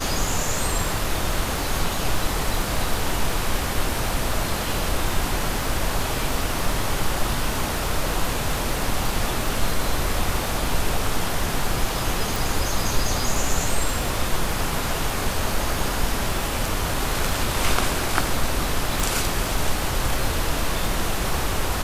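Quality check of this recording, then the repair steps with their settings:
crackle 59/s -29 dBFS
12.36 pop
19 pop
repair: de-click

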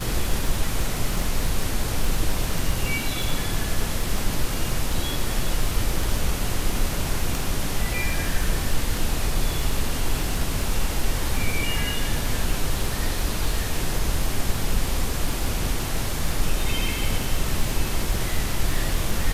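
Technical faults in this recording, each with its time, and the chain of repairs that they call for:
crackle 24/s -24 dBFS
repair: de-click

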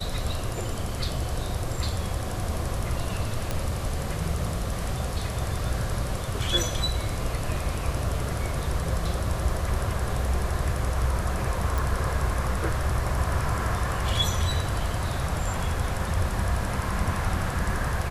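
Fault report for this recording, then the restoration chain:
3.51 pop
11.78 pop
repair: de-click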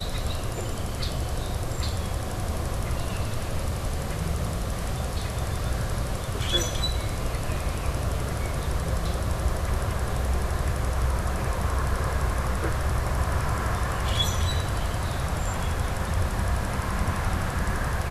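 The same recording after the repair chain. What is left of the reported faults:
none

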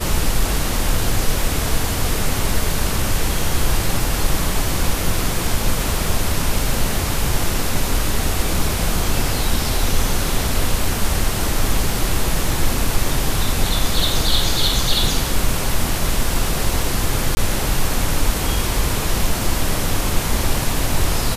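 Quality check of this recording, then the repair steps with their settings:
17.35–17.37 gap 20 ms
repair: interpolate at 17.35, 20 ms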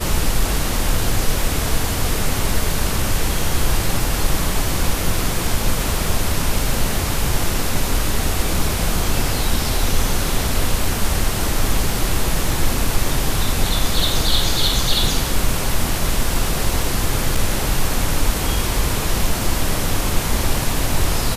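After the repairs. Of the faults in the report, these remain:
none

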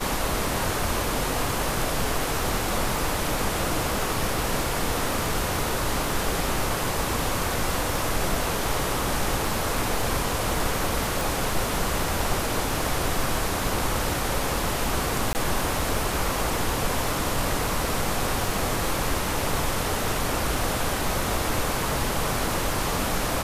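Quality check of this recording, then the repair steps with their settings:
crackle 23/s -32 dBFS
11.21 pop
15.33–15.35 gap 19 ms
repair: de-click; interpolate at 15.33, 19 ms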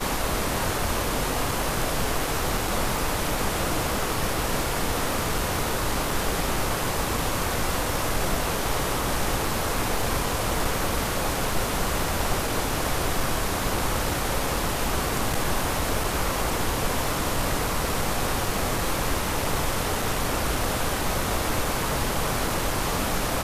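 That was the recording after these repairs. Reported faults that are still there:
none

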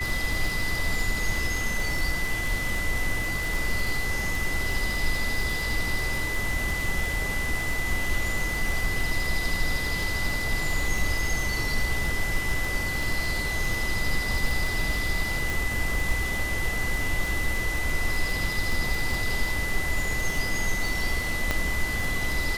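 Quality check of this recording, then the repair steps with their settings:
crackle 50/s -28 dBFS
tone 2000 Hz -29 dBFS
15.5 pop
21.51 pop -10 dBFS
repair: de-click; notch 2000 Hz, Q 30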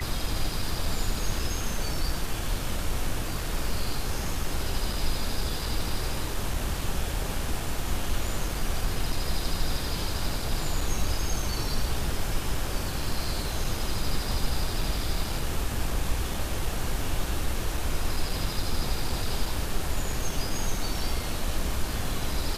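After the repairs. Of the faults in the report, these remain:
none

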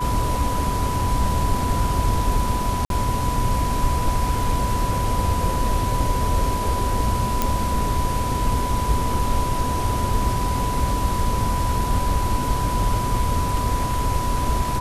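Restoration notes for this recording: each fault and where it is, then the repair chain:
tone 990 Hz -25 dBFS
2.85–2.9 gap 52 ms
7.42 pop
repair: de-click; notch 990 Hz, Q 30; interpolate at 2.85, 52 ms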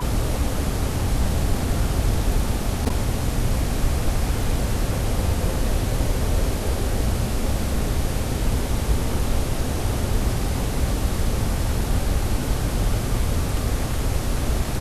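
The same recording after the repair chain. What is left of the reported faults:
none

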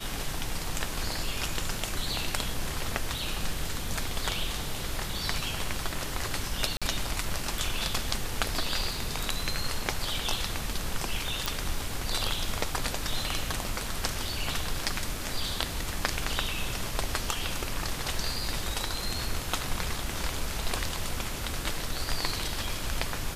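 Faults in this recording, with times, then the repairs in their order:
6.77–6.82 gap 46 ms
11.46 pop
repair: de-click; interpolate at 6.77, 46 ms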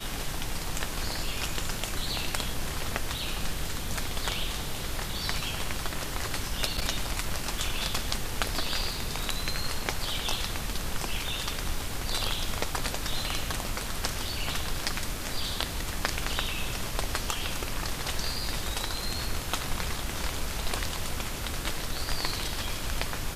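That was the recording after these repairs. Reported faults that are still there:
none

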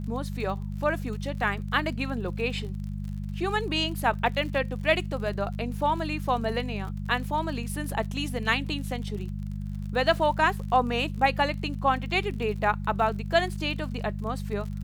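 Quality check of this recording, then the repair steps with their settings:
crackle 51/s -36 dBFS
hum 50 Hz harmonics 4 -33 dBFS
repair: de-click; de-hum 50 Hz, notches 4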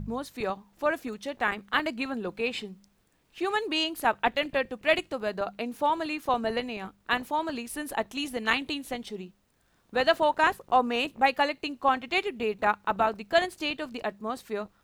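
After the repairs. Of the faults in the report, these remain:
none

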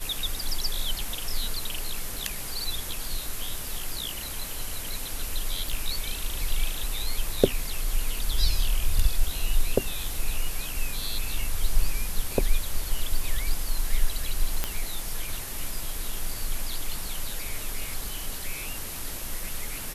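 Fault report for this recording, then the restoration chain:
5.69 pop
14.64 pop -10 dBFS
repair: de-click

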